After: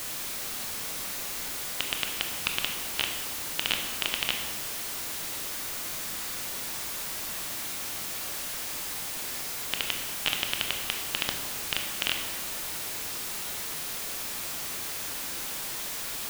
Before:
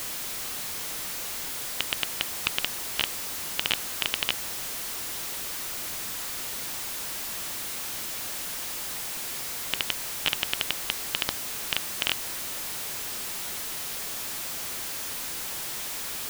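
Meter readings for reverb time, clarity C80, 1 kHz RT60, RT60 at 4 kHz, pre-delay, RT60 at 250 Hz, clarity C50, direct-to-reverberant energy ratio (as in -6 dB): 1.5 s, 7.0 dB, 1.4 s, 0.95 s, 20 ms, 1.7 s, 5.0 dB, 3.0 dB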